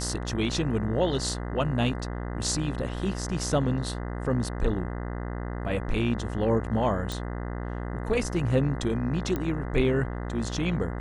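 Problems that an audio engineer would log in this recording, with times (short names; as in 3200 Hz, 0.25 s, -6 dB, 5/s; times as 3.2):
buzz 60 Hz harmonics 34 -33 dBFS
7.12 pop
9.36 pop -17 dBFS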